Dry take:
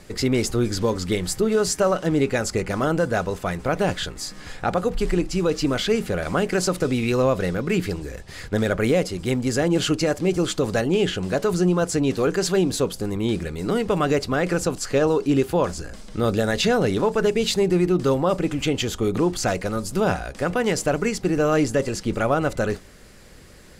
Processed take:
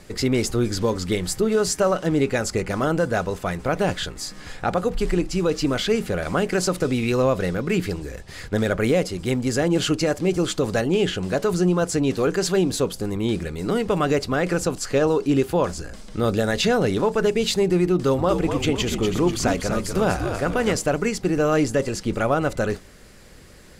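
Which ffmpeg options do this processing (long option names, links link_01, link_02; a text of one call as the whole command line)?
ffmpeg -i in.wav -filter_complex "[0:a]asettb=1/sr,asplit=3[link_01][link_02][link_03];[link_01]atrim=end=17.944[link_04];[link_02]atrim=start=17.94:end=20.77,asetpts=PTS-STARTPTS,afade=type=in:duration=0.004:curve=qsin,afade=type=out:start_time=2.826:duration=0.004:curve=qsin,asplit=7[link_05][link_06][link_07][link_08][link_09][link_10][link_11];[link_06]adelay=244,afreqshift=-77,volume=-6.5dB[link_12];[link_07]adelay=488,afreqshift=-154,volume=-12.5dB[link_13];[link_08]adelay=732,afreqshift=-231,volume=-18.5dB[link_14];[link_09]adelay=976,afreqshift=-308,volume=-24.6dB[link_15];[link_10]adelay=1220,afreqshift=-385,volume=-30.6dB[link_16];[link_11]adelay=1464,afreqshift=-462,volume=-36.6dB[link_17];[link_05][link_12][link_13][link_14][link_15][link_16][link_17]amix=inputs=7:normalize=0,atrim=end_sample=124803[link_18];[link_03]atrim=start=20.766[link_19];[link_04][link_18]acrossfade=duration=0.004:curve1=hsin:curve2=qsin[link_20];[link_20][link_19]acrossfade=duration=0.004:curve1=qsin:curve2=hsin" out.wav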